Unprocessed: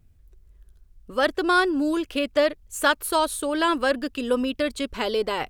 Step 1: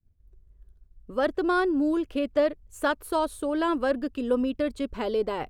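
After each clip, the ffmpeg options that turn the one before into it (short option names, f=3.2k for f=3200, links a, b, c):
-af "tiltshelf=f=1.3k:g=6.5,agate=range=-33dB:threshold=-41dB:ratio=3:detection=peak,volume=-6.5dB"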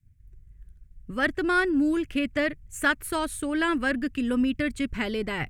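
-af "equalizer=f=125:t=o:w=1:g=10,equalizer=f=500:t=o:w=1:g=-11,equalizer=f=1k:t=o:w=1:g=-8,equalizer=f=2k:t=o:w=1:g=11,equalizer=f=4k:t=o:w=1:g=-5,equalizer=f=8k:t=o:w=1:g=5,volume=4dB"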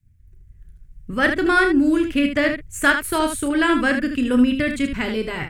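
-filter_complex "[0:a]dynaudnorm=f=150:g=9:m=4dB,asplit=2[a][b];[b]aecho=0:1:32|77:0.355|0.422[c];[a][c]amix=inputs=2:normalize=0,volume=2dB"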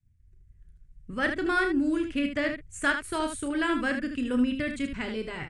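-af "aresample=22050,aresample=44100,volume=-9dB"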